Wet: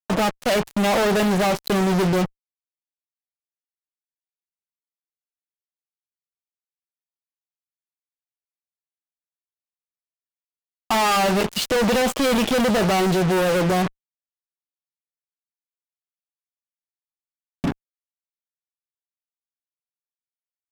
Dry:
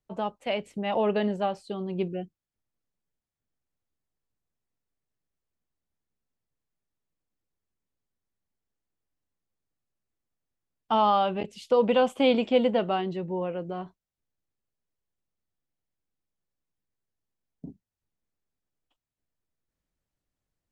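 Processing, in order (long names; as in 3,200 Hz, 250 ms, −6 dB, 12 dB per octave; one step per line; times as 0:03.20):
parametric band 1,200 Hz +4.5 dB 0.27 octaves
in parallel at −1 dB: downward compressor 6 to 1, threshold −29 dBFS, peak gain reduction 12.5 dB
on the sum: fuzz pedal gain 46 dB, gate −41 dBFS
level −4.5 dB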